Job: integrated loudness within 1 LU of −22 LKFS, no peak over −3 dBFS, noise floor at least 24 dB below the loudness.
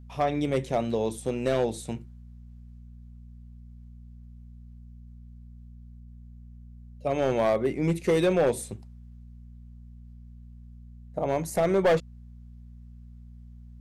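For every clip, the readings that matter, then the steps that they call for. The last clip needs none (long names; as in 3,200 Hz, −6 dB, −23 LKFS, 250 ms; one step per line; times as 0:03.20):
share of clipped samples 0.7%; peaks flattened at −17.0 dBFS; mains hum 60 Hz; hum harmonics up to 240 Hz; level of the hum −44 dBFS; integrated loudness −27.0 LKFS; sample peak −17.0 dBFS; target loudness −22.0 LKFS
→ clipped peaks rebuilt −17 dBFS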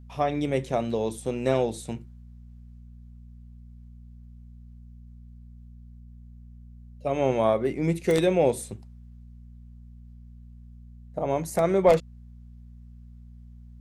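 share of clipped samples 0.0%; mains hum 60 Hz; hum harmonics up to 240 Hz; level of the hum −44 dBFS
→ hum removal 60 Hz, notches 4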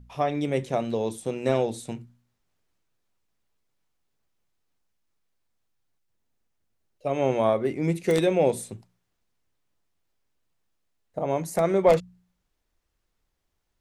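mains hum none found; integrated loudness −25.5 LKFS; sample peak −8.0 dBFS; target loudness −22.0 LKFS
→ level +3.5 dB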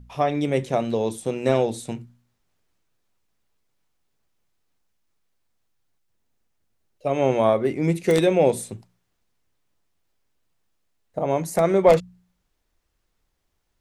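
integrated loudness −22.0 LKFS; sample peak −4.5 dBFS; background noise floor −73 dBFS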